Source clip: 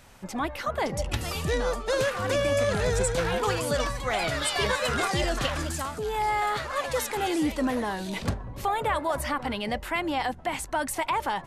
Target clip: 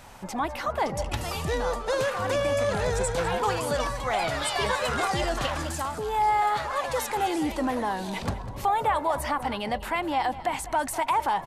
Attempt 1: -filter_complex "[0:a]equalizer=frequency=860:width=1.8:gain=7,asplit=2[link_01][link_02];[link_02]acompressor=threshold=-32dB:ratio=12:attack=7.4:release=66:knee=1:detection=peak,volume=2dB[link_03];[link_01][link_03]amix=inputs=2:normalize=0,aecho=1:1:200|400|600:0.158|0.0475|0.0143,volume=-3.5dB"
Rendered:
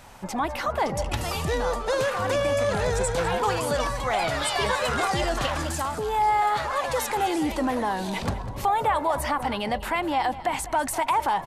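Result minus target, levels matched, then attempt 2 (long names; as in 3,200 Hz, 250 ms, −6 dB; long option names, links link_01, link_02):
downward compressor: peak gain reduction −8 dB
-filter_complex "[0:a]equalizer=frequency=860:width=1.8:gain=7,asplit=2[link_01][link_02];[link_02]acompressor=threshold=-41dB:ratio=12:attack=7.4:release=66:knee=1:detection=peak,volume=2dB[link_03];[link_01][link_03]amix=inputs=2:normalize=0,aecho=1:1:200|400|600:0.158|0.0475|0.0143,volume=-3.5dB"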